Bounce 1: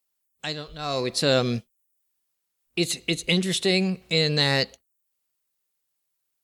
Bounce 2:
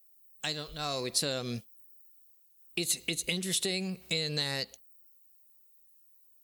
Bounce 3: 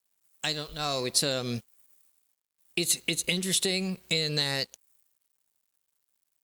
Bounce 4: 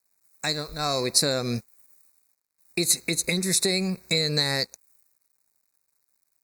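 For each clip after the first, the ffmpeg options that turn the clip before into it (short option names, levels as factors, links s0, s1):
-af "acompressor=threshold=0.0398:ratio=6,aemphasis=mode=production:type=50fm,volume=0.708"
-af "aeval=exprs='sgn(val(0))*max(abs(val(0))-0.00168,0)':c=same,volume=1.68"
-af "asuperstop=centerf=3100:order=8:qfactor=2.5,volume=1.68"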